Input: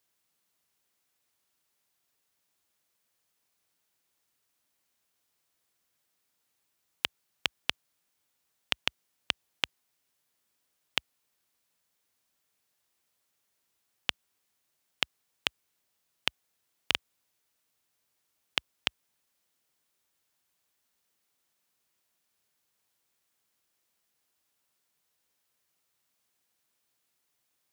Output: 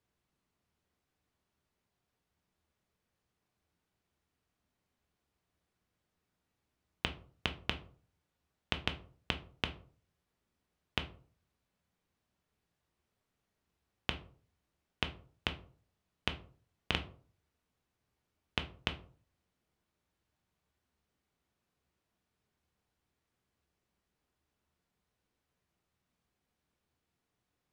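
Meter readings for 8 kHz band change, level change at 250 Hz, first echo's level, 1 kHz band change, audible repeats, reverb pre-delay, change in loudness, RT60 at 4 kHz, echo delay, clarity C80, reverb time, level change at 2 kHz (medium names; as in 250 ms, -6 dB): -12.0 dB, +6.0 dB, no echo, -1.0 dB, no echo, 3 ms, -5.0 dB, 0.25 s, no echo, 19.5 dB, 0.45 s, -4.5 dB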